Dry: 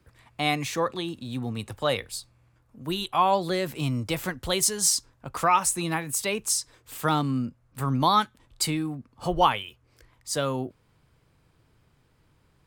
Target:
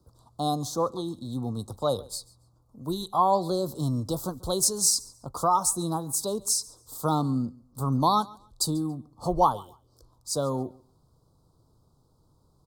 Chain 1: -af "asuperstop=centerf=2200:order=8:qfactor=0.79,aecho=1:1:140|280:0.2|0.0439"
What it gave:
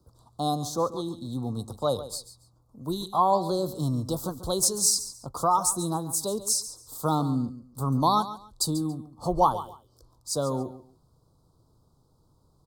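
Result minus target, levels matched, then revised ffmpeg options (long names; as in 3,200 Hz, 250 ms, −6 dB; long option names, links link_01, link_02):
echo-to-direct +9 dB
-af "asuperstop=centerf=2200:order=8:qfactor=0.79,aecho=1:1:140|280:0.0708|0.0156"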